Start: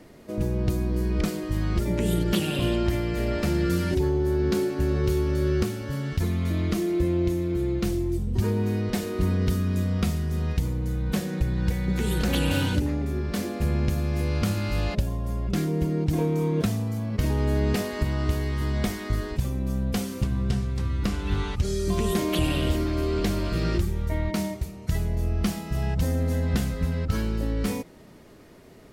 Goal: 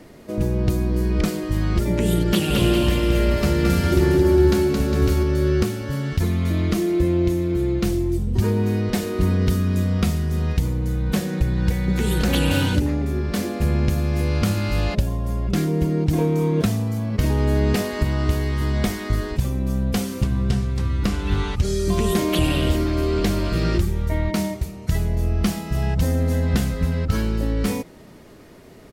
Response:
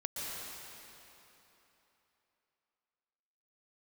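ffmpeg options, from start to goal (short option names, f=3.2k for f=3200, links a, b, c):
-filter_complex "[0:a]asplit=3[a][b][c];[a]afade=t=out:st=2.49:d=0.02[d];[b]aecho=1:1:220|407|566|701.1|815.9:0.631|0.398|0.251|0.158|0.1,afade=t=in:st=2.49:d=0.02,afade=t=out:st=5.22:d=0.02[e];[c]afade=t=in:st=5.22:d=0.02[f];[d][e][f]amix=inputs=3:normalize=0,volume=4.5dB"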